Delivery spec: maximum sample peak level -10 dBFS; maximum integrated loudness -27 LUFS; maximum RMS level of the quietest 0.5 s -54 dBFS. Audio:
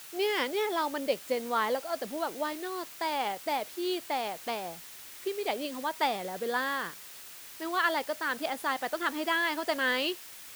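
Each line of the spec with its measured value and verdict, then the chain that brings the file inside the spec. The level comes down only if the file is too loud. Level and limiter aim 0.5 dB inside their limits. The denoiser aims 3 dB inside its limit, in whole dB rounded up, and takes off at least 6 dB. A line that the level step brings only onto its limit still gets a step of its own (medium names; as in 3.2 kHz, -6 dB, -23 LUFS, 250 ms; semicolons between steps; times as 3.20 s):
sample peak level -15.0 dBFS: pass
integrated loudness -31.5 LUFS: pass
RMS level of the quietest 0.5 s -47 dBFS: fail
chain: noise reduction 10 dB, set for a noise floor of -47 dBFS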